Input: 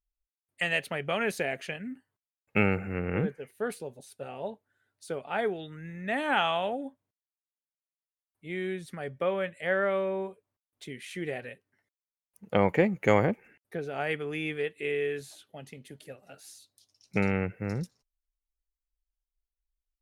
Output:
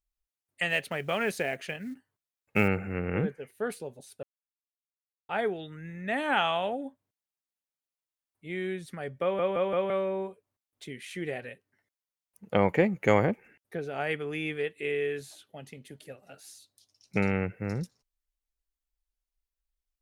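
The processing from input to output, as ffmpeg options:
-filter_complex "[0:a]asettb=1/sr,asplit=3[a][b][c];[a]atrim=end=0.694[d];[b]atrim=start=0.69:end=2.68,asetpts=PTS-STARTPTS,afade=t=in:d=0.004:c=qsin,afade=t=out:st=1.986:d=0.004:c=qsin,acrusher=bits=7:mode=log:mix=0:aa=0.000001[e];[c]atrim=start=2.676[f];[d][e]acrossfade=d=0.004:c1=hsin:c2=qsin[g];[g][f]acrossfade=d=0.004:c1=qsin:c2=hsin,asplit=7[h][i][j][k][l][m][n];[h]atrim=end=4.23,asetpts=PTS-STARTPTS,afade=t=out:st=4.226:d=0.004:c=hsin[o];[i]atrim=start=4.23:end=5.29,asetpts=PTS-STARTPTS,volume=0[p];[j]atrim=start=5.29:end=9.392,asetpts=PTS-STARTPTS,afade=t=in:d=0.004:c=hsin[q];[k]atrim=start=9.218:end=9.392[r];[l]atrim=start=9.218:end=9.392[s];[m]atrim=start=9.218:end=9.392[t];[n]atrim=start=9.898[u];[o][p][q]concat=n=3:v=0:a=1[v];[v][r]acrossfade=d=0.004:c1=hsin:c2=hsin[w];[w][s]acrossfade=d=0.004:c1=hsin:c2=hsin[x];[x][t]acrossfade=d=0.004:c1=hsin:c2=hsin[y];[y][u]acrossfade=d=0.004:c1=hsin:c2=hsin"

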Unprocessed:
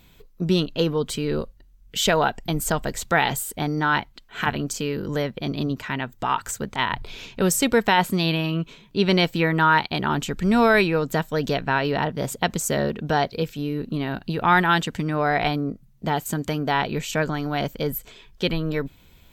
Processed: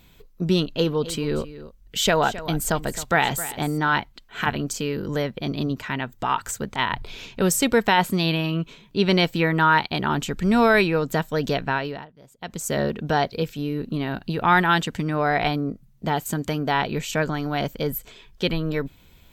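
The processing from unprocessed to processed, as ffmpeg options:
-filter_complex "[0:a]asettb=1/sr,asplit=3[a][b][c];[a]atrim=end=0.584[d];[b]atrim=start=0.58:end=3.93,asetpts=PTS-STARTPTS,afade=t=in:d=0.004:c=qsin,afade=t=out:st=3.346:d=0.004:c=qsin,aecho=1:1:265:0.178,atrim=end_sample=147735[e];[c]atrim=start=3.926[f];[d][e]acrossfade=d=0.004:c1=hsin:c2=qsin[g];[g][f]acrossfade=d=0.004:c1=qsin:c2=hsin,asplit=3[h][i][j];[h]atrim=end=12.07,asetpts=PTS-STARTPTS,afade=t=out:st=11.64:d=0.43:silence=0.0668344[k];[i]atrim=start=12.07:end=12.37,asetpts=PTS-STARTPTS,volume=-23.5dB[l];[j]atrim=start=12.37,asetpts=PTS-STARTPTS,afade=t=in:d=0.43:silence=0.0668344[m];[k][l][m]concat=n=3:v=0:a=1"

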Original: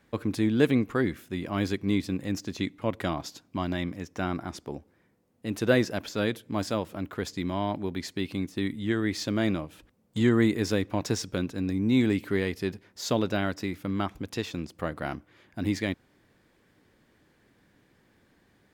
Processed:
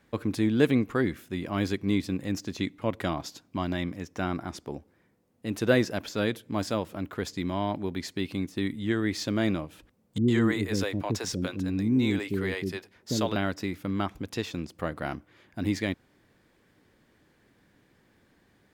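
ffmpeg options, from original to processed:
-filter_complex "[0:a]asettb=1/sr,asplit=3[a][b][c];[a]atrim=end=10.184[d];[b]atrim=start=10.18:end=13.36,asetpts=PTS-STARTPTS,afade=t=in:d=0.004:c=qsin,afade=t=out:st=3.176:d=0.004:c=qsin,acrossover=split=420[e][f];[f]adelay=100[g];[e][g]amix=inputs=2:normalize=0,atrim=end_sample=140238[h];[c]atrim=start=13.356[i];[d][h]acrossfade=d=0.004:c1=hsin:c2=qsin[j];[j][i]acrossfade=d=0.004:c1=qsin:c2=hsin"

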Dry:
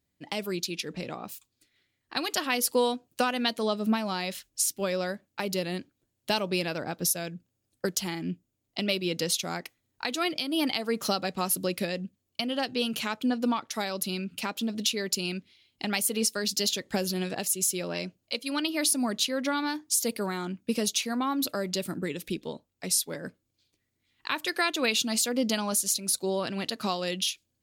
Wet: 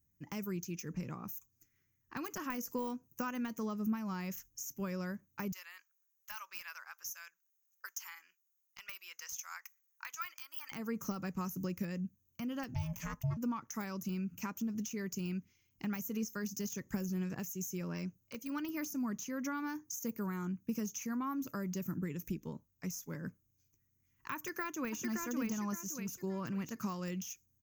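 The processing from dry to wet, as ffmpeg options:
-filter_complex "[0:a]asettb=1/sr,asplit=3[a][b][c];[a]atrim=end=5.524[d];[b]atrim=start=5.52:end=10.72,asetpts=PTS-STARTPTS,afade=t=in:d=0.004:c=qsin,afade=t=out:st=5.196:d=0.004:c=qsin,highpass=f=1.1k:w=0.5412,highpass=f=1.1k:w=1.3066[e];[c]atrim=start=10.716[f];[d][e]acrossfade=d=0.004:c1=hsin:c2=qsin[g];[g][f]acrossfade=d=0.004:c1=qsin:c2=hsin,asettb=1/sr,asplit=3[h][i][j];[h]atrim=end=12.744[k];[i]atrim=start=12.74:end=13.37,asetpts=PTS-STARTPTS,afade=t=in:d=0.004:c=qsin,afade=t=out:st=0.626:d=0.004:c=qsin,aeval=exprs='val(0)*sin(2*PI*390*n/s)':c=same[l];[j]atrim=start=13.366[m];[k][l]acrossfade=d=0.004:c1=hsin:c2=qsin[n];[n][m]acrossfade=d=0.004:c1=qsin:c2=hsin,asplit=2[o][p];[p]afade=t=in:st=24.35:d=0.01,afade=t=out:st=25.02:d=0.01,aecho=0:1:570|1140|1710|2280:0.841395|0.252419|0.0757256|0.0227177[q];[o][q]amix=inputs=2:normalize=0,deesser=0.8,firequalizer=gain_entry='entry(140,0);entry(260,-8);entry(690,-21);entry(1000,-8);entry(2500,-15);entry(3900,-30);entry(6300,3);entry(9100,-28);entry(14000,5)':delay=0.05:min_phase=1,acompressor=threshold=-39dB:ratio=2,volume=3dB"

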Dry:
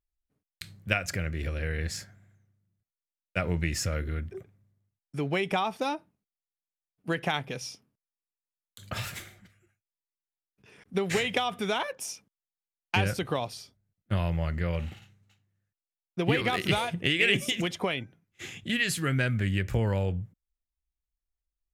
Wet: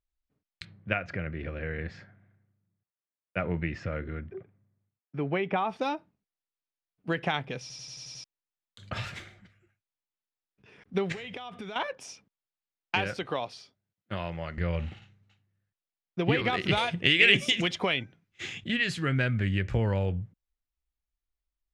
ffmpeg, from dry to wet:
-filter_complex "[0:a]asplit=3[a][b][c];[a]afade=t=out:st=0.64:d=0.02[d];[b]highpass=110,lowpass=2.3k,afade=t=in:st=0.64:d=0.02,afade=t=out:st=5.68:d=0.02[e];[c]afade=t=in:st=5.68:d=0.02[f];[d][e][f]amix=inputs=3:normalize=0,asettb=1/sr,asplit=3[g][h][i];[g]atrim=end=11.124[j];[h]atrim=start=11.12:end=11.76,asetpts=PTS-STARTPTS,afade=t=in:d=0.004:c=qsin,afade=t=out:st=0.636:d=0.004:c=qsin,acompressor=threshold=-35dB:ratio=16:attack=3.2:release=140:knee=1:detection=peak[k];[i]atrim=start=11.756[l];[j][k]acrossfade=d=0.004:c1=hsin:c2=qsin[m];[m][l]acrossfade=d=0.004:c1=qsin:c2=hsin,asettb=1/sr,asplit=3[n][o][p];[n]atrim=end=12.954[q];[o]atrim=start=12.95:end=14.58,asetpts=PTS-STARTPTS,afade=t=in:d=0.004:c=qsin,afade=t=out:st=1.626:d=0.004:c=qsin,highpass=f=340:p=1[r];[p]atrim=start=14.576[s];[q][r]acrossfade=d=0.004:c1=hsin:c2=qsin[t];[t][s]acrossfade=d=0.004:c1=qsin:c2=hsin,asettb=1/sr,asplit=3[u][v][w];[u]atrim=end=16.774[x];[v]atrim=start=16.77:end=18.64,asetpts=PTS-STARTPTS,afade=t=in:d=0.004:c=qsin,afade=t=out:st=1.866:d=0.004:c=qsin,highshelf=f=2k:g=8[y];[w]atrim=start=18.636[z];[x][y]acrossfade=d=0.004:c1=hsin:c2=qsin[aa];[aa][z]acrossfade=d=0.004:c1=qsin:c2=hsin,asplit=8[ab][ac][ad][ae][af][ag][ah][ai];[ab]atrim=end=7.702[aj];[ac]atrim=start=7.608:end=7.702[ak];[ad]atrim=start=7.608:end=7.702[al];[ae]atrim=start=7.608:end=7.702[am];[af]atrim=start=7.608:end=7.702[an];[ag]atrim=start=7.608:end=7.702[ao];[ah]atrim=start=7.608:end=7.702[ap];[ai]atrim=start=8.238[aq];[aj][ak]acrossfade=d=0.004:c1=hsin:c2=hsin[ar];[ar][al]acrossfade=d=0.004:c1=hsin:c2=hsin[as];[as][am]acrossfade=d=0.004:c1=hsin:c2=hsin[at];[at][an]acrossfade=d=0.004:c1=hsin:c2=hsin[au];[au][ao]acrossfade=d=0.004:c1=hsin:c2=hsin[av];[av][ap]acrossfade=d=0.004:c1=hsin:c2=hsin[aw];[aw][aq]acrossfade=d=0.004:c1=hsin:c2=hsin,lowpass=4.4k"

